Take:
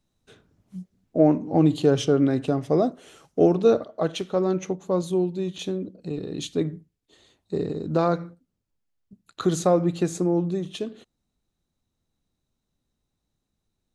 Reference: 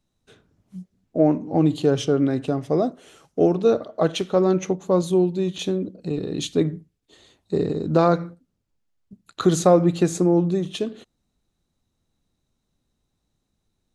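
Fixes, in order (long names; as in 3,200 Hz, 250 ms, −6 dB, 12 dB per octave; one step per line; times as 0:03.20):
level correction +4.5 dB, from 0:03.84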